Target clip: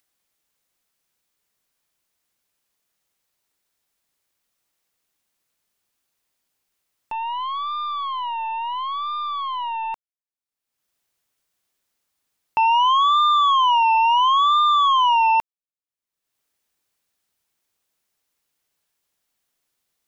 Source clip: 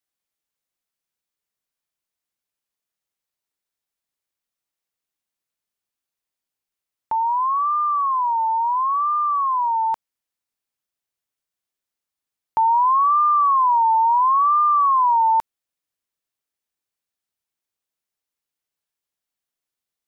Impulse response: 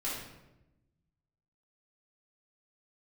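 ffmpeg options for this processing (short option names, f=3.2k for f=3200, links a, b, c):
-af "acompressor=mode=upward:threshold=-38dB:ratio=2.5,aeval=exprs='0.224*(cos(1*acos(clip(val(0)/0.224,-1,1)))-cos(1*PI/2))+0.0631*(cos(3*acos(clip(val(0)/0.224,-1,1)))-cos(3*PI/2))+0.00316*(cos(6*acos(clip(val(0)/0.224,-1,1)))-cos(6*PI/2))':c=same"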